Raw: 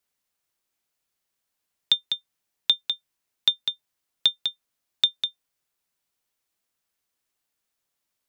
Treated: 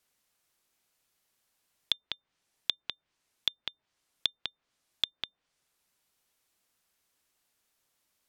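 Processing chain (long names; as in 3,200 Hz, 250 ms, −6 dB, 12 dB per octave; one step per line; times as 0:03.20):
in parallel at +3 dB: compressor whose output falls as the input rises −26 dBFS, ratio −1
on the sum: treble cut that deepens with the level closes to 630 Hz, closed at −17 dBFS
level −6 dB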